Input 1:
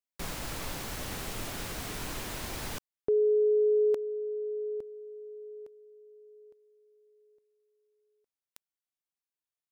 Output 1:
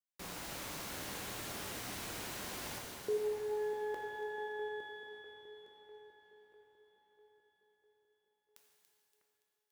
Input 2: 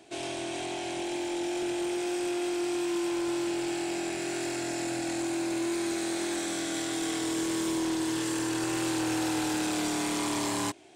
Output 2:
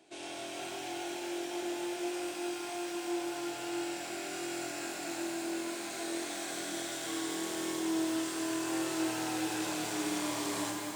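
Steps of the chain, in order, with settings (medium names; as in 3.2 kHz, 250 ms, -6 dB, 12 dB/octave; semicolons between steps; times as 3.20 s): high-pass 160 Hz 6 dB/octave; on a send: two-band feedback delay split 2.3 kHz, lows 649 ms, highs 285 ms, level -11 dB; on the sum: pitch-shifted reverb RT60 2.5 s, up +12 st, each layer -8 dB, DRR 0 dB; trim -8 dB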